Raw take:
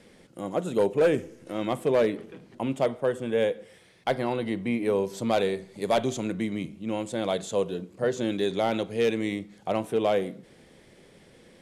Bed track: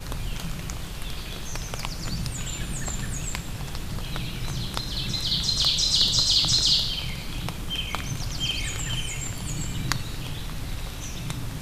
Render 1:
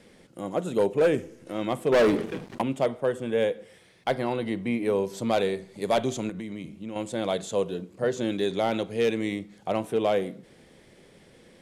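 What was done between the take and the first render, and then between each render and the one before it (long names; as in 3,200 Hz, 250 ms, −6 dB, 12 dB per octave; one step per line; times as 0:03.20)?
0:01.92–0:02.62: leveller curve on the samples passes 3
0:06.29–0:06.96: downward compressor 5 to 1, threshold −32 dBFS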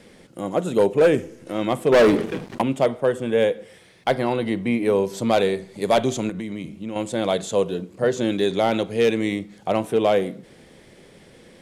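level +5.5 dB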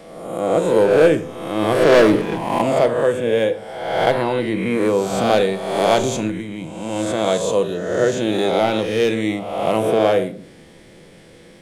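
peak hold with a rise ahead of every peak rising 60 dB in 1.14 s
rectangular room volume 530 cubic metres, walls furnished, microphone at 0.71 metres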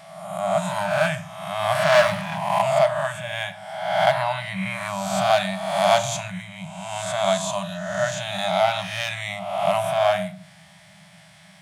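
brick-wall band-stop 200–580 Hz
high-pass filter 140 Hz 12 dB per octave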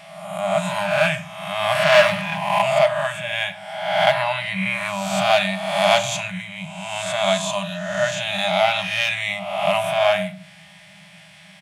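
parametric band 2,600 Hz +8.5 dB 0.84 octaves
comb filter 4.9 ms, depth 32%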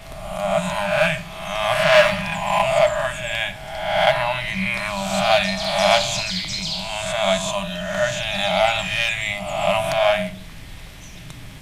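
mix in bed track −6.5 dB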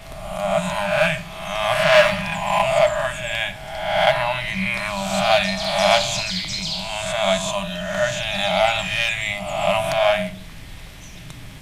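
no processing that can be heard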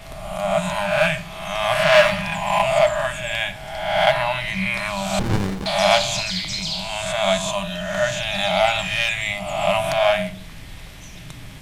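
0:05.19–0:05.66: windowed peak hold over 65 samples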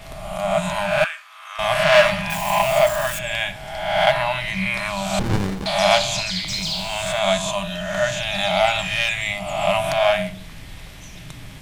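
0:01.04–0:01.59: four-pole ladder high-pass 1,100 Hz, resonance 55%
0:02.30–0:03.19: spike at every zero crossing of −21.5 dBFS
0:06.48–0:07.19: converter with a step at zero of −36 dBFS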